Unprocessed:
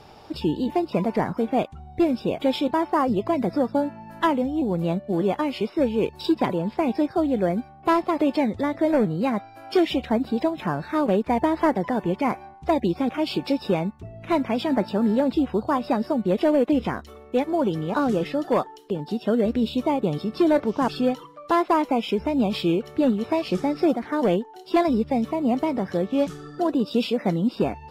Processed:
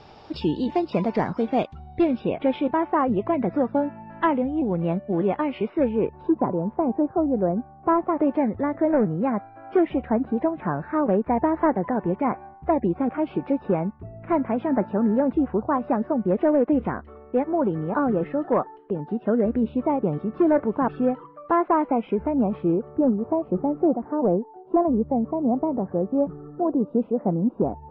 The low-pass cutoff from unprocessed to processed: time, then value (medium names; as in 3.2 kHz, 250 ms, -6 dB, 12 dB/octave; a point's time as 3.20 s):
low-pass 24 dB/octave
1.67 s 5.6 kHz
2.47 s 2.5 kHz
5.84 s 2.5 kHz
6.37 s 1.2 kHz
7.53 s 1.2 kHz
8.32 s 1.8 kHz
22.13 s 1.8 kHz
23.28 s 1 kHz